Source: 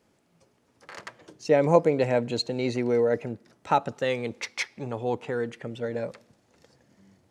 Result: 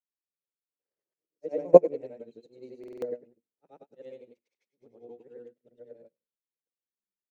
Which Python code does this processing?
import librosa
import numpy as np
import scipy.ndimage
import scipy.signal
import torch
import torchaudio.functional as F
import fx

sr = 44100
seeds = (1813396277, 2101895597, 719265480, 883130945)

p1 = fx.frame_reverse(x, sr, frame_ms=220.0)
p2 = fx.level_steps(p1, sr, step_db=20)
p3 = p1 + (p2 * 10.0 ** (2.5 / 20.0))
p4 = fx.low_shelf_res(p3, sr, hz=700.0, db=13.5, q=1.5)
p5 = p4 + fx.echo_wet_highpass(p4, sr, ms=97, feedback_pct=53, hz=1900.0, wet_db=-8.5, dry=0)
p6 = fx.vibrato(p5, sr, rate_hz=0.75, depth_cents=55.0)
p7 = fx.peak_eq(p6, sr, hz=100.0, db=-14.0, octaves=1.5)
p8 = fx.hum_notches(p7, sr, base_hz=50, count=7)
p9 = fx.buffer_glitch(p8, sr, at_s=(2.79,), block=2048, repeats=4)
p10 = fx.upward_expand(p9, sr, threshold_db=-32.0, expansion=2.5)
y = p10 * 10.0 ** (-7.5 / 20.0)